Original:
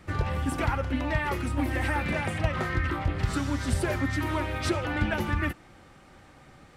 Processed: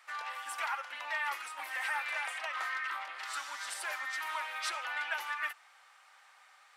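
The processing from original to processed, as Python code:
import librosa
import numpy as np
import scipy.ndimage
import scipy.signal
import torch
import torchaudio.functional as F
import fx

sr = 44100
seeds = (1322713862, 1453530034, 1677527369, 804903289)

y = scipy.signal.sosfilt(scipy.signal.butter(4, 900.0, 'highpass', fs=sr, output='sos'), x)
y = F.gain(torch.from_numpy(y), -2.5).numpy()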